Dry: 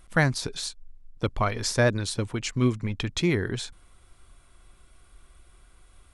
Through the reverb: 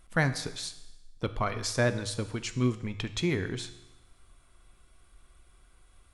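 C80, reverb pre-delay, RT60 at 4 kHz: 15.0 dB, 3 ms, 1.0 s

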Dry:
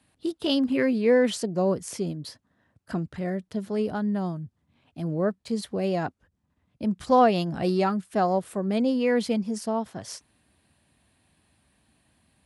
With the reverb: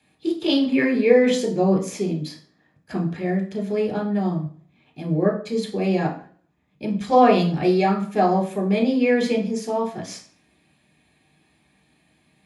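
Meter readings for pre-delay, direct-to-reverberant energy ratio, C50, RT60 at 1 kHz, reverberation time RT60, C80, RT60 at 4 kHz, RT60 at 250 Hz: 3 ms, 1.0 dB, 9.5 dB, 0.45 s, 0.45 s, 14.0 dB, 0.40 s, 0.50 s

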